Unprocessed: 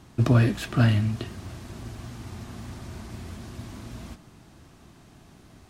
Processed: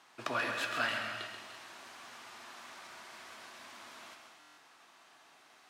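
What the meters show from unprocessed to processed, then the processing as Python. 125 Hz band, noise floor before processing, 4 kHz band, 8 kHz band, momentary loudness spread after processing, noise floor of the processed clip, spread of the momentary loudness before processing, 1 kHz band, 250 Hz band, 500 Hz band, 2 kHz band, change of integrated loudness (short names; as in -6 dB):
-34.5 dB, -53 dBFS, -1.5 dB, -5.0 dB, 24 LU, -62 dBFS, 19 LU, -1.5 dB, -22.5 dB, -9.5 dB, +0.5 dB, -16.5 dB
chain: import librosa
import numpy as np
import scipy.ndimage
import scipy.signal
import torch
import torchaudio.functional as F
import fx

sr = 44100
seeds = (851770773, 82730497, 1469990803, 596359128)

p1 = scipy.signal.sosfilt(scipy.signal.butter(2, 1000.0, 'highpass', fs=sr, output='sos'), x)
p2 = fx.high_shelf(p1, sr, hz=5200.0, db=-10.0)
p3 = p2 + fx.echo_single(p2, sr, ms=134, db=-8.0, dry=0)
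p4 = fx.rev_gated(p3, sr, seeds[0], gate_ms=360, shape='flat', drr_db=5.0)
y = fx.buffer_glitch(p4, sr, at_s=(4.39,), block=1024, repeats=7)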